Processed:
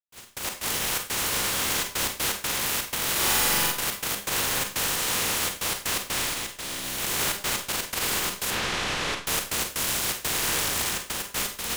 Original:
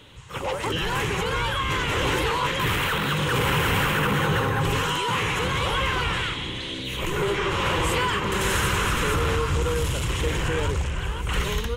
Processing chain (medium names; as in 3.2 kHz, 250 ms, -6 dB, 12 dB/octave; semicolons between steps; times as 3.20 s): spectral contrast reduction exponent 0.16; 8.50–9.21 s: low-pass 4.2 kHz 12 dB/octave; peak limiter -14.5 dBFS, peak gain reduction 8.5 dB; trance gate ".x.x.xxx.xxxxxx" 123 bpm -60 dB; 3.11–3.72 s: flutter echo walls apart 7.4 m, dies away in 1.3 s; Schroeder reverb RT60 0.39 s, combs from 31 ms, DRR 4.5 dB; trim -2 dB